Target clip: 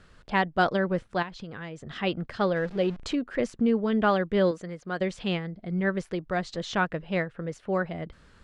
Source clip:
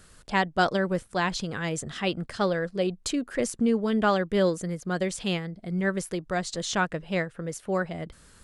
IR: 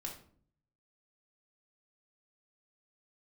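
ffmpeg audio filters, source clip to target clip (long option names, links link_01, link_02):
-filter_complex "[0:a]asettb=1/sr,asplit=3[link_01][link_02][link_03];[link_01]atrim=end=2.564[link_04];[link_02]atrim=start=2.56:end=3.15,asetpts=PTS-STARTPTS,afade=type=in:duration=0.004:curve=qsin,afade=type=out:start_time=0.586:duration=0.004:curve=qsin,aeval=exprs='val(0)+0.5*0.0126*sgn(val(0))':channel_layout=same[link_05];[link_03]atrim=start=3.146[link_06];[link_04][link_05]acrossfade=duration=0.004:curve1=hsin:curve2=qsin[link_07];[link_07][link_06]acrossfade=duration=0.004:curve1=qsin:curve2=hsin,lowpass=3500,asettb=1/sr,asplit=3[link_08][link_09][link_10];[link_08]atrim=end=1.224[link_11];[link_09]atrim=start=1.22:end=1.9,asetpts=PTS-STARTPTS,afade=type=in:duration=0.004:curve=qsin,afade=type=out:start_time=0.676:duration=0.004:curve=qsin,acompressor=threshold=-35dB:ratio=10[link_12];[link_10]atrim=start=1.896[link_13];[link_11][link_12]acrossfade=duration=0.004:curve1=hsin:curve2=qsin[link_14];[link_14][link_13]acrossfade=duration=0.004:curve1=qsin:curve2=hsin,asettb=1/sr,asplit=3[link_15][link_16][link_17];[link_15]atrim=end=4.514[link_18];[link_16]atrim=start=4.51:end=5.01,asetpts=PTS-STARTPTS,afade=type=in:duration=0.004:curve=qsin,afade=type=out:start_time=0.496:duration=0.004:curve=qsin,lowshelf=frequency=280:gain=-10[link_19];[link_17]atrim=start=5.006[link_20];[link_18][link_19]acrossfade=duration=0.004:curve1=hsin:curve2=qsin[link_21];[link_21][link_20]acrossfade=duration=0.004:curve1=qsin:curve2=hsin"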